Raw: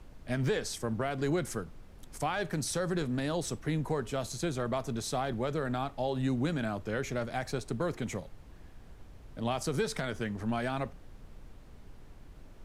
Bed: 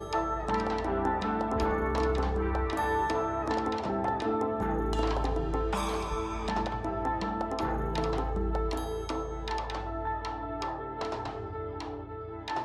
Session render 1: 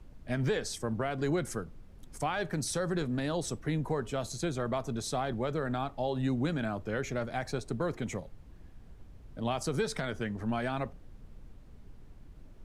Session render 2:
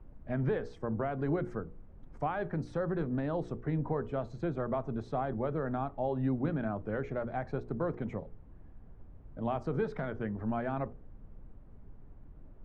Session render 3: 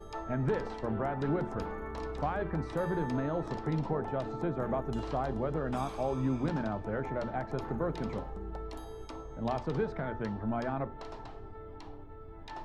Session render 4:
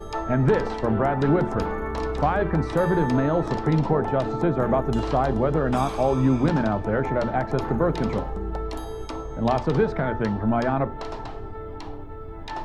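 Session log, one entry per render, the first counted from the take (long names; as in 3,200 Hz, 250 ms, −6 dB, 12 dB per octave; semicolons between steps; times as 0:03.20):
broadband denoise 6 dB, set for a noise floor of −52 dBFS
low-pass filter 1,300 Hz 12 dB per octave; mains-hum notches 60/120/180/240/300/360/420/480 Hz
mix in bed −11 dB
level +11 dB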